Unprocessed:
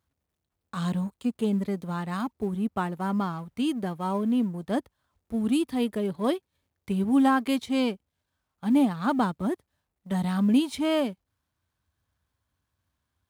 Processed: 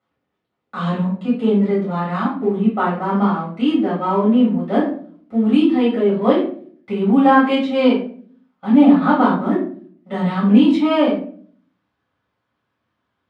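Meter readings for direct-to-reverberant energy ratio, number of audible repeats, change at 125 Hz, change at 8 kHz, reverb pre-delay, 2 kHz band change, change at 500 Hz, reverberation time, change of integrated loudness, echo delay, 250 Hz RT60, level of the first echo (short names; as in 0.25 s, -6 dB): -7.5 dB, none, +8.5 dB, under -10 dB, 4 ms, +10.0 dB, +12.5 dB, 0.50 s, +10.5 dB, none, 0.80 s, none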